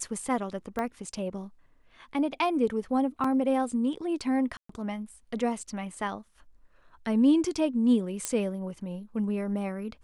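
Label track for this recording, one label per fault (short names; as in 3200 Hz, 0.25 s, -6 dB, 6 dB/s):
0.790000	0.790000	pop -19 dBFS
3.240000	3.240000	gap 4.1 ms
4.570000	4.690000	gap 0.124 s
8.250000	8.250000	pop -13 dBFS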